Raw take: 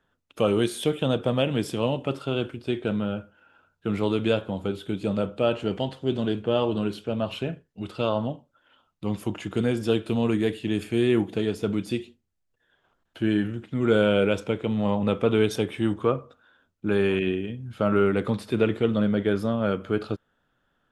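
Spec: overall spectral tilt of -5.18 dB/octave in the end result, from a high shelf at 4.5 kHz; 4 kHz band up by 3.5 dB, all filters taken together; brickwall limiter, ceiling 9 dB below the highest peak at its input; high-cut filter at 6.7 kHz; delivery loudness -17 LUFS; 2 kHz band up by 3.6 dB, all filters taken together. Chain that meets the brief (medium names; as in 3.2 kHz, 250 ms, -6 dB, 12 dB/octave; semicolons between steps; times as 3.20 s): low-pass 6.7 kHz; peaking EQ 2 kHz +5 dB; peaking EQ 4 kHz +6.5 dB; treble shelf 4.5 kHz -8 dB; trim +12 dB; peak limiter -5 dBFS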